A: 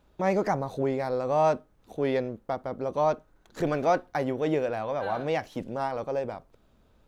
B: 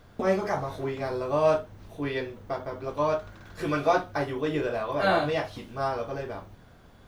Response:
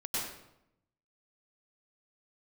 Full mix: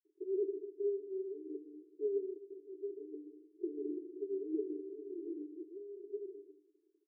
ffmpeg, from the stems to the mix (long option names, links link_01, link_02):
-filter_complex "[0:a]volume=-5.5dB,asplit=2[link_01][link_02];[1:a]adelay=1,volume=-8dB,asplit=2[link_03][link_04];[link_04]volume=-7.5dB[link_05];[link_02]apad=whole_len=312179[link_06];[link_03][link_06]sidechaincompress=threshold=-34dB:ratio=8:attack=16:release=390[link_07];[2:a]atrim=start_sample=2205[link_08];[link_05][link_08]afir=irnorm=-1:irlink=0[link_09];[link_01][link_07][link_09]amix=inputs=3:normalize=0,aeval=exprs='sgn(val(0))*max(abs(val(0))-0.00266,0)':channel_layout=same,acompressor=mode=upward:threshold=-45dB:ratio=2.5,asuperpass=centerf=360:order=20:qfactor=2.7"